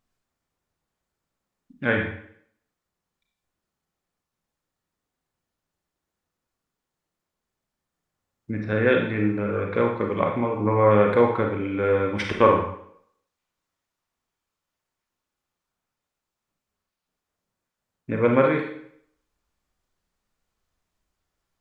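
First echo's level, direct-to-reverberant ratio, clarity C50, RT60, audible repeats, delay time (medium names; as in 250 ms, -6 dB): no echo, 1.5 dB, 4.5 dB, 0.65 s, no echo, no echo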